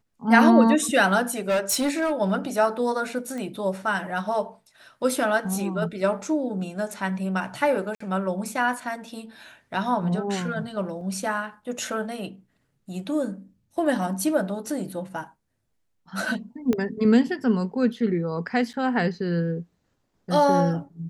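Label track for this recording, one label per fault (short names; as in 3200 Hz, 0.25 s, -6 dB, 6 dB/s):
1.390000	2.130000	clipped -19 dBFS
3.380000	3.380000	pop -22 dBFS
7.950000	8.000000	gap 54 ms
11.010000	11.010000	gap 2.5 ms
16.730000	16.730000	pop -13 dBFS
18.730000	18.740000	gap 8 ms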